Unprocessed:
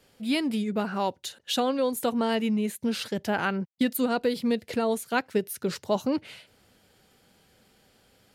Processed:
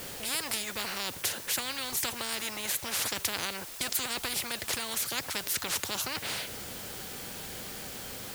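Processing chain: in parallel at -10 dB: requantised 8-bit, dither triangular; on the sum: spectral compressor 10:1

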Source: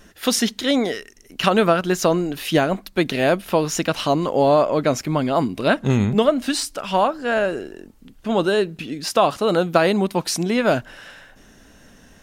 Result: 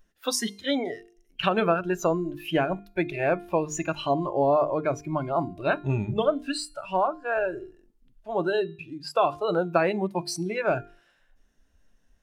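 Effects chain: spectral noise reduction 18 dB; notches 50/100/150/200/250/300/350/400/450 Hz; resonator 350 Hz, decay 0.49 s, mix 50%

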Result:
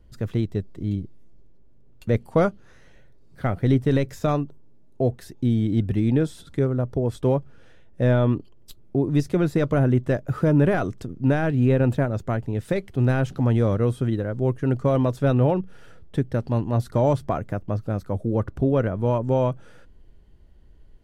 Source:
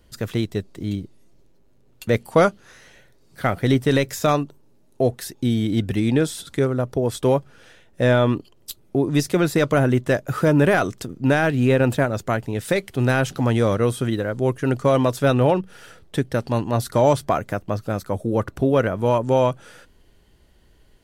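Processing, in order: tilt -2.5 dB/oct; gain -6.5 dB

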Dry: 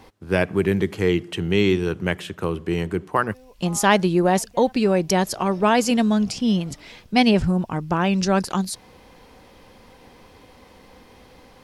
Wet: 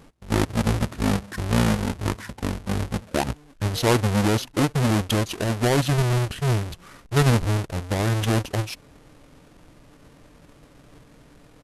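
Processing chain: half-waves squared off; pitch shift -9.5 st; gain -6 dB

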